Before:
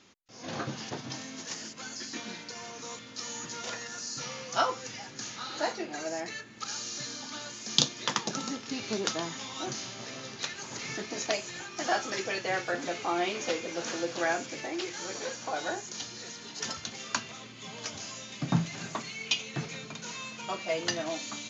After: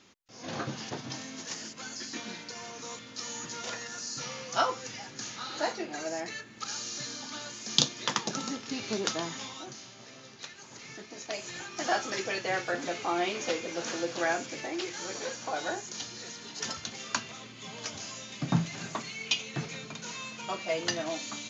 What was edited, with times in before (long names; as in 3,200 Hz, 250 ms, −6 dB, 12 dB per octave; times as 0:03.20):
0:09.45–0:11.49: duck −8.5 dB, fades 0.20 s